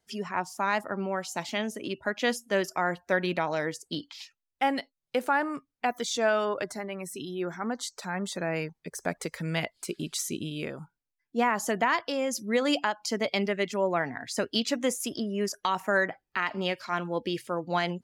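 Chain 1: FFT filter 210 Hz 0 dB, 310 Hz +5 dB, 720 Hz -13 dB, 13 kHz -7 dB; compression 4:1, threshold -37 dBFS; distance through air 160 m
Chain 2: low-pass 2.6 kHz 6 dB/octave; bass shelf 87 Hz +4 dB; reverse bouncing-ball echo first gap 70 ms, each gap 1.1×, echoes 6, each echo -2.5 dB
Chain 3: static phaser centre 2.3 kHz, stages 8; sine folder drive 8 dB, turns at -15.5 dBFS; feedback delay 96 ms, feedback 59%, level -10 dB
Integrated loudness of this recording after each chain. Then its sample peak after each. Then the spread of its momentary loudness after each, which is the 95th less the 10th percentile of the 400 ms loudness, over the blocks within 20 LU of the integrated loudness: -42.0 LUFS, -27.5 LUFS, -23.5 LUFS; -24.5 dBFS, -9.5 dBFS, -12.0 dBFS; 4 LU, 9 LU, 8 LU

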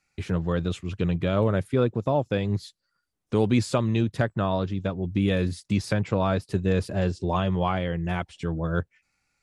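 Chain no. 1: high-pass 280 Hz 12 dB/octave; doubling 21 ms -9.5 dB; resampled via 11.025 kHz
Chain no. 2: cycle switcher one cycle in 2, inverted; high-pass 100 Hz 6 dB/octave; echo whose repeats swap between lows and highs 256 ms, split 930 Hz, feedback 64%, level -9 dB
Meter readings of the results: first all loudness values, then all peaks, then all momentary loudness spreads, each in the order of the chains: -29.0 LUFS, -26.5 LUFS; -11.5 dBFS, -10.0 dBFS; 8 LU, 8 LU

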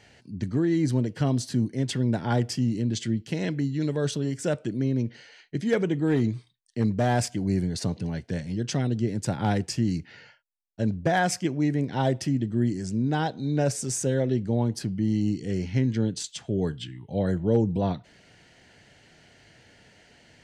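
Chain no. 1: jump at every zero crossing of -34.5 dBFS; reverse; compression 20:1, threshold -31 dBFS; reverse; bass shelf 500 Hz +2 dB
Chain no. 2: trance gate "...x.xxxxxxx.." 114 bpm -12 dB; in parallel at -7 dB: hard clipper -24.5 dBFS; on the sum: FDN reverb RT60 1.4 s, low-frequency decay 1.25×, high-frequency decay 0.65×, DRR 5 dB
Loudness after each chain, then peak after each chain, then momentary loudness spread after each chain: -35.0 LUFS, -25.5 LUFS; -22.0 dBFS, -6.5 dBFS; 4 LU, 13 LU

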